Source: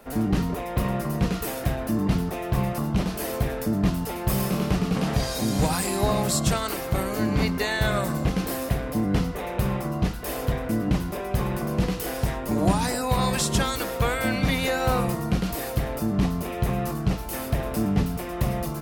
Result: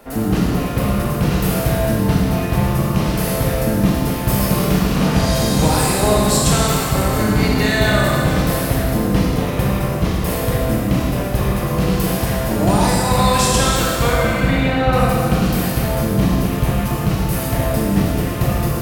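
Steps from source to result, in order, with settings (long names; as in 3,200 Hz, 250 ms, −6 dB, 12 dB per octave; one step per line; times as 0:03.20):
0:14.08–0:14.93: high-frequency loss of the air 290 metres
four-comb reverb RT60 2.2 s, combs from 26 ms, DRR −3 dB
level +4.5 dB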